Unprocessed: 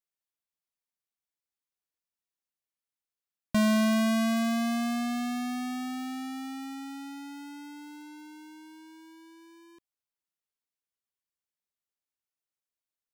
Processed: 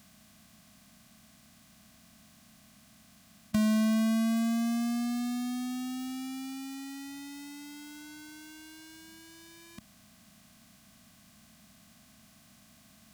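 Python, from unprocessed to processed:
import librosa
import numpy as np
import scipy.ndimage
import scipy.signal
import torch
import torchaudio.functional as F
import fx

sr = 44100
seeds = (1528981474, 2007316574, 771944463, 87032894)

y = fx.bin_compress(x, sr, power=0.4)
y = scipy.signal.sosfilt(scipy.signal.butter(2, 46.0, 'highpass', fs=sr, output='sos'), y)
y = fx.bass_treble(y, sr, bass_db=11, treble_db=4)
y = F.gain(torch.from_numpy(y), -9.0).numpy()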